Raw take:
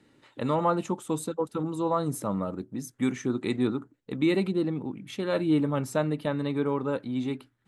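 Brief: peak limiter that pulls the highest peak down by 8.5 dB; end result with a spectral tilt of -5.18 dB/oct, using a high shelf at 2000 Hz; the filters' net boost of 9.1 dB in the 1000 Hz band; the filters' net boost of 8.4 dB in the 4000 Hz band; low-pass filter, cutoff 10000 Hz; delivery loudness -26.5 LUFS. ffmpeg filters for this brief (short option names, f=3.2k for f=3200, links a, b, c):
-af "lowpass=10k,equalizer=f=1k:t=o:g=9,highshelf=f=2k:g=6.5,equalizer=f=4k:t=o:g=3.5,volume=1.5dB,alimiter=limit=-13.5dB:level=0:latency=1"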